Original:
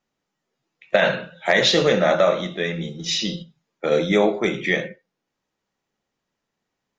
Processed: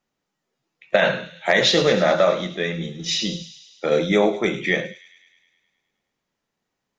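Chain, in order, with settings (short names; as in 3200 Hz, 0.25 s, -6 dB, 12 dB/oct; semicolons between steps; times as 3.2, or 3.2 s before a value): thin delay 0.104 s, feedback 66%, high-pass 3600 Hz, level -11 dB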